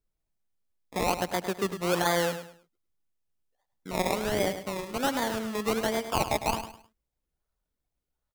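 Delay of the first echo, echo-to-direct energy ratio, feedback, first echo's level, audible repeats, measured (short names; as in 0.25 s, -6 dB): 0.104 s, -9.5 dB, 29%, -10.0 dB, 3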